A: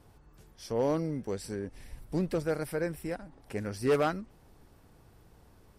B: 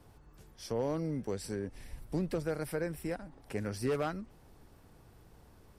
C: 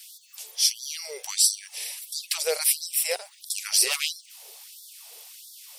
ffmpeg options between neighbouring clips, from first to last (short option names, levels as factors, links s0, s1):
-filter_complex "[0:a]acrossover=split=130[s0][s1];[s1]acompressor=threshold=0.0251:ratio=2.5[s2];[s0][s2]amix=inputs=2:normalize=0"
-af "aexciter=amount=7.1:drive=7.4:freq=2300,tiltshelf=f=790:g=3,afftfilt=real='re*gte(b*sr/1024,380*pow(3400/380,0.5+0.5*sin(2*PI*1.5*pts/sr)))':imag='im*gte(b*sr/1024,380*pow(3400/380,0.5+0.5*sin(2*PI*1.5*pts/sr)))':win_size=1024:overlap=0.75,volume=2.51"